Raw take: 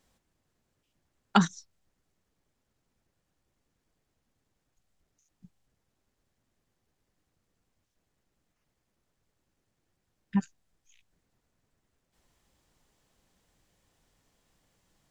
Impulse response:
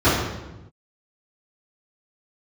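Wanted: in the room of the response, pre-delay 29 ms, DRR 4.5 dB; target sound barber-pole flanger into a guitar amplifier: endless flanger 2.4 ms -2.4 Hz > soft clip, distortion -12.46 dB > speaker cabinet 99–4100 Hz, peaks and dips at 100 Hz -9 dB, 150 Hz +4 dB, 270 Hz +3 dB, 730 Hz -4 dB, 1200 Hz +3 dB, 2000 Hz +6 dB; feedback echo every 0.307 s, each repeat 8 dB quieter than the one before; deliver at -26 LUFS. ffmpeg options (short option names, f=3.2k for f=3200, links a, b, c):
-filter_complex "[0:a]aecho=1:1:307|614|921|1228|1535:0.398|0.159|0.0637|0.0255|0.0102,asplit=2[a][b];[1:a]atrim=start_sample=2205,adelay=29[c];[b][c]afir=irnorm=-1:irlink=0,volume=-27.5dB[d];[a][d]amix=inputs=2:normalize=0,asplit=2[e][f];[f]adelay=2.4,afreqshift=-2.4[g];[e][g]amix=inputs=2:normalize=1,asoftclip=threshold=-23dB,highpass=99,equalizer=f=100:t=q:w=4:g=-9,equalizer=f=150:t=q:w=4:g=4,equalizer=f=270:t=q:w=4:g=3,equalizer=f=730:t=q:w=4:g=-4,equalizer=f=1.2k:t=q:w=4:g=3,equalizer=f=2k:t=q:w=4:g=6,lowpass=f=4.1k:w=0.5412,lowpass=f=4.1k:w=1.3066,volume=9dB"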